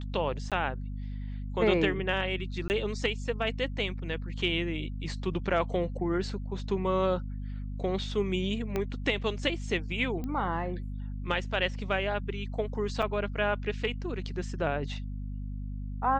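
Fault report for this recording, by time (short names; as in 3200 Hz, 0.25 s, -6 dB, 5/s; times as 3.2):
hum 50 Hz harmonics 5 -36 dBFS
0.5–0.52 gap 17 ms
2.68–2.7 gap 19 ms
8.76 pop -17 dBFS
10.24 pop -24 dBFS
13.02–13.03 gap 5.4 ms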